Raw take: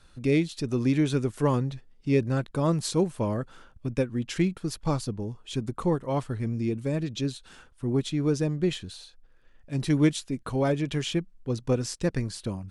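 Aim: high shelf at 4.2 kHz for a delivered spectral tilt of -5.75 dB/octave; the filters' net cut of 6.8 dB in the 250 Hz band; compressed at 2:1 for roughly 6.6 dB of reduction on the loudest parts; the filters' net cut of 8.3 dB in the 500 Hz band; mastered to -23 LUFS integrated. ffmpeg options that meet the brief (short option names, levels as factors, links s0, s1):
-af "equalizer=f=250:t=o:g=-7,equalizer=f=500:t=o:g=-8,highshelf=f=4200:g=-6,acompressor=threshold=0.0178:ratio=2,volume=5.31"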